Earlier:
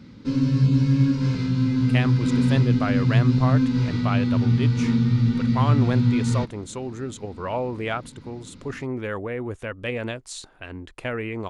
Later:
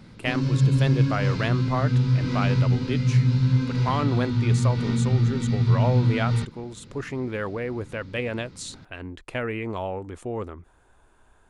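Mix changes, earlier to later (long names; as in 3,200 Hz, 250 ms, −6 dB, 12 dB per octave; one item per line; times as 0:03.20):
speech: entry −1.70 s
background: add parametric band 260 Hz −8 dB 0.48 octaves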